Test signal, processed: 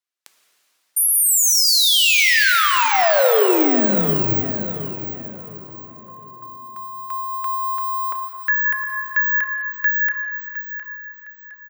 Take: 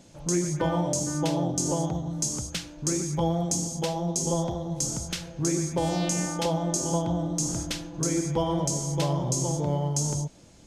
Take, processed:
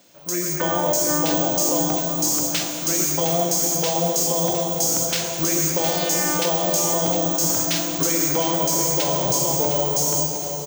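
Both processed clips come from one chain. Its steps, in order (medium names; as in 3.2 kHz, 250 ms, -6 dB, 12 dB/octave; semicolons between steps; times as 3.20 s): careless resampling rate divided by 2×, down none, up zero stuff; frequency weighting A; level rider gain up to 12 dB; peak limiter -13 dBFS; band-stop 850 Hz, Q 13; dynamic bell 1.1 kHz, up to -4 dB, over -35 dBFS, Q 3.7; on a send: feedback delay 711 ms, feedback 34%, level -11 dB; on the sum: plate-style reverb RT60 3.9 s, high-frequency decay 0.95×, DRR 4 dB; trim +1.5 dB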